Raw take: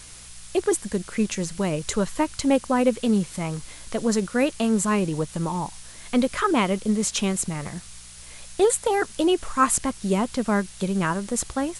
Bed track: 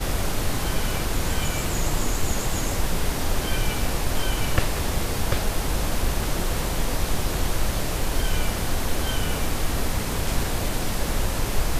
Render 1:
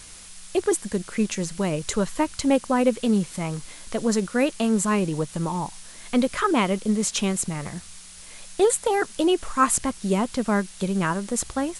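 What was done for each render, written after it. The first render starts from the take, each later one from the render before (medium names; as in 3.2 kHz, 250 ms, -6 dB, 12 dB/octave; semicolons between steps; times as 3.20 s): de-hum 60 Hz, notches 2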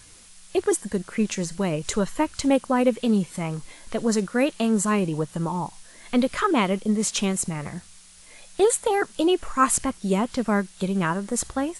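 noise print and reduce 6 dB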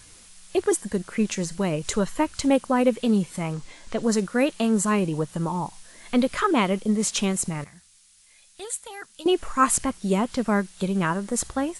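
3.53–4.03 s: low-pass 8.3 kHz 24 dB/octave; 7.64–9.26 s: amplifier tone stack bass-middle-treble 5-5-5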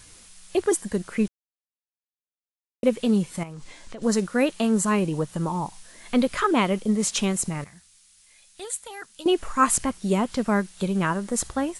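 1.28–2.83 s: mute; 3.43–4.02 s: compression 5:1, threshold -35 dBFS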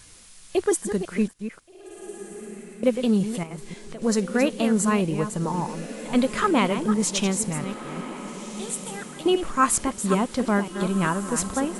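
chunks repeated in reverse 267 ms, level -9.5 dB; echo that smears into a reverb 1525 ms, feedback 43%, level -13 dB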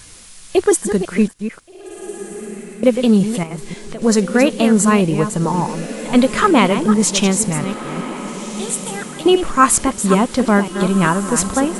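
trim +8.5 dB; peak limiter -1 dBFS, peak gain reduction 1 dB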